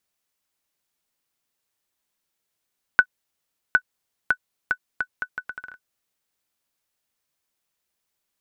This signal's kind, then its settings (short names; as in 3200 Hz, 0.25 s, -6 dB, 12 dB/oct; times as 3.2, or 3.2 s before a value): bouncing ball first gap 0.76 s, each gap 0.73, 1490 Hz, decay 67 ms -2.5 dBFS